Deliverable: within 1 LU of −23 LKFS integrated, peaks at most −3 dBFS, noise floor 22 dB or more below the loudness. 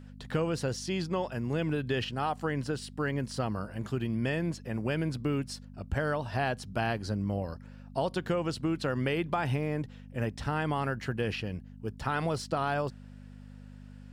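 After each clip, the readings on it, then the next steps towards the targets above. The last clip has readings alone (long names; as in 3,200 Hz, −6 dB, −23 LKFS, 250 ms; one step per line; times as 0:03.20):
mains hum 50 Hz; hum harmonics up to 250 Hz; level of the hum −45 dBFS; integrated loudness −32.5 LKFS; sample peak −15.0 dBFS; target loudness −23.0 LKFS
→ hum removal 50 Hz, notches 5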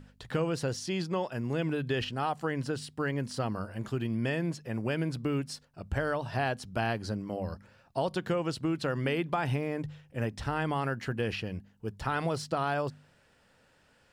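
mains hum none found; integrated loudness −33.0 LKFS; sample peak −15.5 dBFS; target loudness −23.0 LKFS
→ level +10 dB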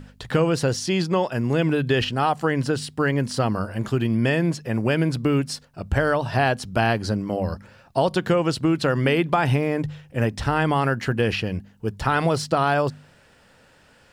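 integrated loudness −23.0 LKFS; sample peak −5.5 dBFS; background noise floor −55 dBFS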